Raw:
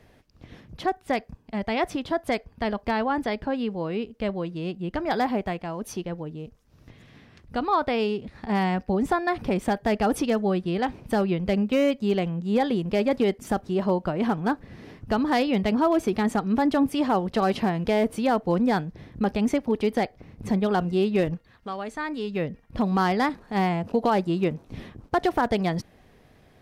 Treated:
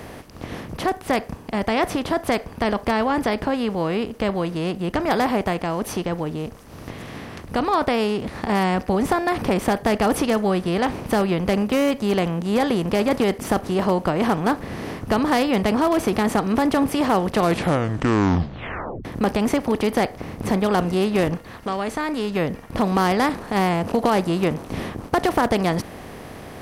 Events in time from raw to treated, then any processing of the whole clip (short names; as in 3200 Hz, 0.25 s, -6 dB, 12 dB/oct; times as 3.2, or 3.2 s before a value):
17.3 tape stop 1.75 s
whole clip: per-bin compression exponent 0.6; high shelf 9300 Hz +10 dB